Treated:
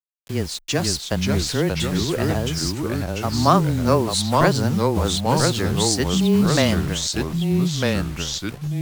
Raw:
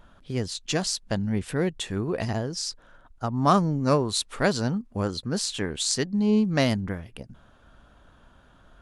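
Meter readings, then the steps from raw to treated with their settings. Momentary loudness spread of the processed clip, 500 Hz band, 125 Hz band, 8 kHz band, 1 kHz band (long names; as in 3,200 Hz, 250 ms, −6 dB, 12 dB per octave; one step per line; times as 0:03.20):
8 LU, +6.0 dB, +8.0 dB, +6.5 dB, +6.5 dB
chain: bit reduction 7 bits
frequency shifter −17 Hz
delay with pitch and tempo change per echo 446 ms, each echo −2 semitones, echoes 2
level +4 dB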